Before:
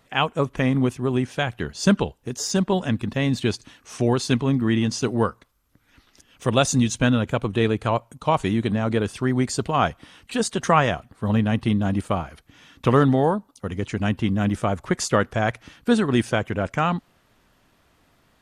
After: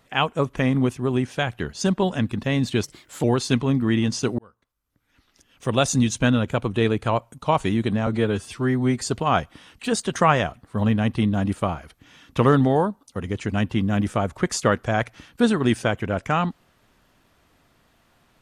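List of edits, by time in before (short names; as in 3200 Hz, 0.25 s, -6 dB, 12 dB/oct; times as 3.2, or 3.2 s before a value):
1.81–2.51 cut
3.53–4.03 speed 123%
5.18–6.81 fade in
8.86–9.49 stretch 1.5×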